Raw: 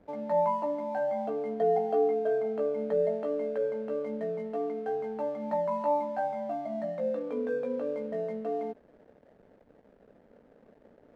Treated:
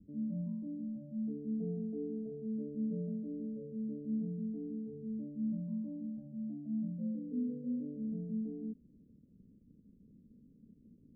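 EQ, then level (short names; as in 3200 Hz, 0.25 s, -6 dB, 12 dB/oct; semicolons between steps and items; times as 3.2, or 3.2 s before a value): inverse Chebyshev low-pass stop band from 770 Hz, stop band 60 dB; low shelf 120 Hz -7.5 dB; +8.5 dB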